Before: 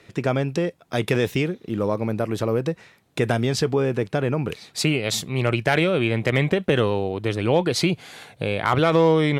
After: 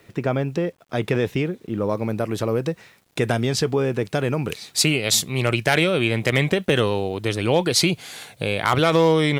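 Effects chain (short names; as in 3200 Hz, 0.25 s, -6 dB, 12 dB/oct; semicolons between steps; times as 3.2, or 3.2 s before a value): high shelf 3700 Hz -8.5 dB, from 1.89 s +3.5 dB, from 4.05 s +10.5 dB; bit-crush 10-bit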